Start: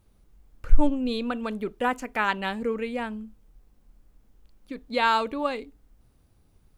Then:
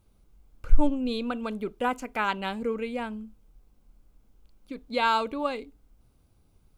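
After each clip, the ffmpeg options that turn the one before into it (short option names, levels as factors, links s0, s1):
-af "bandreject=f=1800:w=6.7,volume=0.841"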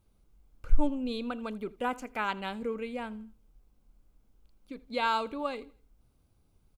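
-af "aecho=1:1:81|162|243:0.0841|0.0303|0.0109,volume=0.596"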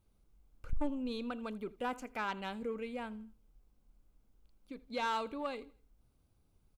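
-af "asoftclip=type=tanh:threshold=0.0708,volume=0.631"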